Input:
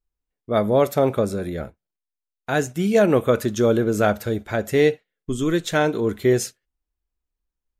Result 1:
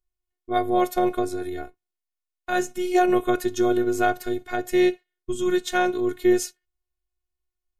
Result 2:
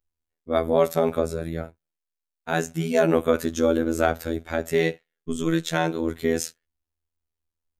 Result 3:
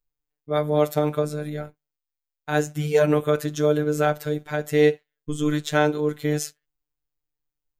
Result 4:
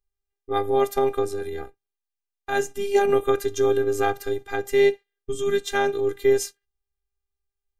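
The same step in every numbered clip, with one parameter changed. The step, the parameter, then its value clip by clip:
robotiser, frequency: 360, 82, 150, 400 Hz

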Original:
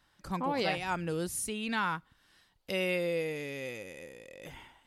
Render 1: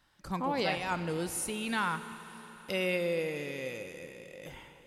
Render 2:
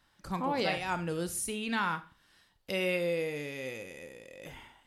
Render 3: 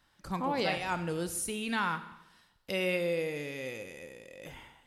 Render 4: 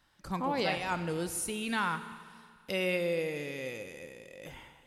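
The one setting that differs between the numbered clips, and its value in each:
Schroeder reverb, RT60: 4.3, 0.34, 0.93, 2 s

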